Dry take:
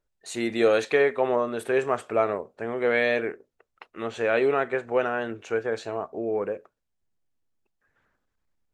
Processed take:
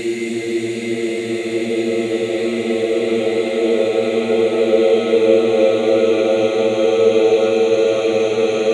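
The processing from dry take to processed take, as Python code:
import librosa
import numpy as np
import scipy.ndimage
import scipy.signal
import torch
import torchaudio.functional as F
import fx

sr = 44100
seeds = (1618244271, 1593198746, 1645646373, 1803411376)

y = fx.env_flanger(x, sr, rest_ms=6.5, full_db=-21.5)
y = fx.rev_gated(y, sr, seeds[0], gate_ms=440, shape='falling', drr_db=-2.5)
y = fx.paulstretch(y, sr, seeds[1], factor=23.0, window_s=0.5, from_s=0.46)
y = y * librosa.db_to_amplitude(3.0)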